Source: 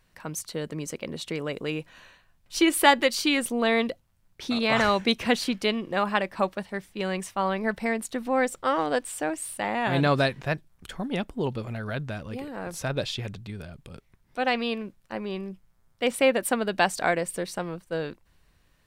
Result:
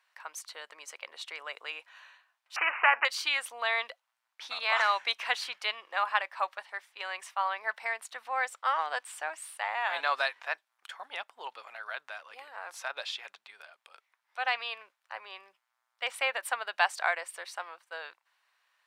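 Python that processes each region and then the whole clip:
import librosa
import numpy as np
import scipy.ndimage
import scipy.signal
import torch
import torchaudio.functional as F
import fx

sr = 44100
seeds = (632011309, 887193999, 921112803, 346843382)

y = fx.chain(x, sr, fx.lowpass(hz=2200.0, slope=12),
    fx.resample_bad(factor=8, down='none', up='filtered'),
    fx.spectral_comp(ratio=2.0), at=(2.56, 3.05))
y = scipy.signal.sosfilt(scipy.signal.butter(4, 840.0, 'highpass', fs=sr, output='sos'), y)
y = fx.high_shelf(y, sr, hz=5300.0, db=-12.0)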